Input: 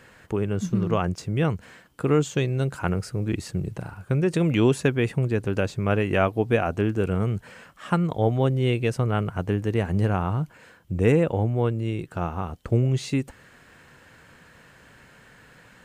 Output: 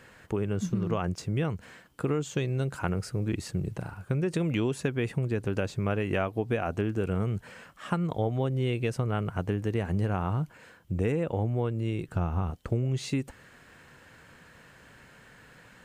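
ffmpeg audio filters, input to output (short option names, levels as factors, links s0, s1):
-filter_complex "[0:a]asettb=1/sr,asplit=3[s0][s1][s2];[s0]atrim=end=12.084[s3];[s1]atrim=start=12.08:end=12.51,asetpts=PTS-STARTPTS,afade=t=in:d=0.004:c=qsin,afade=t=out:st=0.426:d=0.004:c=qsin,lowshelf=f=160:g=12[s4];[s2]atrim=start=12.506[s5];[s3][s4]acrossfade=d=0.004:c1=hsin:c2=qsin[s6];[s6][s5]acrossfade=d=0.004:c1=qsin:c2=hsin,acompressor=threshold=0.0794:ratio=6,volume=0.794"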